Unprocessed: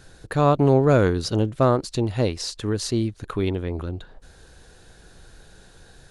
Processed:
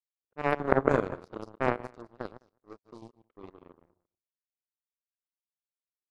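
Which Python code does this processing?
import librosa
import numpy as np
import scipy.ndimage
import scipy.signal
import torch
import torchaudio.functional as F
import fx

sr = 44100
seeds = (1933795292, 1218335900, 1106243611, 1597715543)

y = fx.reverse_delay_fb(x, sr, ms=104, feedback_pct=58, wet_db=-5)
y = fx.peak_eq(y, sr, hz=440.0, db=13.5, octaves=2.6)
y = fx.env_lowpass(y, sr, base_hz=540.0, full_db=-5.0)
y = fx.power_curve(y, sr, exponent=3.0)
y = y * 10.0 ** (-9.0 / 20.0)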